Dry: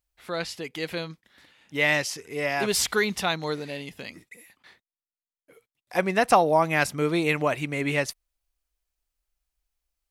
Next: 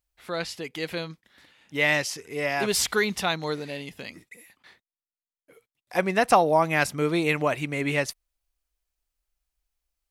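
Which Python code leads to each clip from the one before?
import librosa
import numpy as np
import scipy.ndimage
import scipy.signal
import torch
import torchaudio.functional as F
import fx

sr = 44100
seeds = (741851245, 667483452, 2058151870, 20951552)

y = x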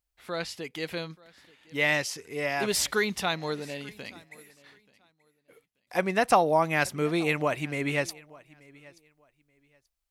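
y = fx.echo_feedback(x, sr, ms=882, feedback_pct=21, wet_db=-23.5)
y = F.gain(torch.from_numpy(y), -2.5).numpy()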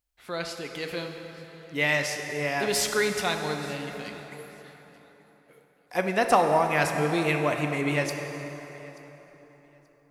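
y = fx.rev_plate(x, sr, seeds[0], rt60_s=4.1, hf_ratio=0.6, predelay_ms=0, drr_db=4.0)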